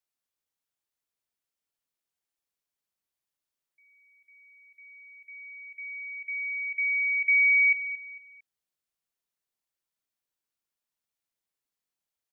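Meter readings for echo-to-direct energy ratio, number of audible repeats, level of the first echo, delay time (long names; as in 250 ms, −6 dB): −13.0 dB, 3, −13.5 dB, 226 ms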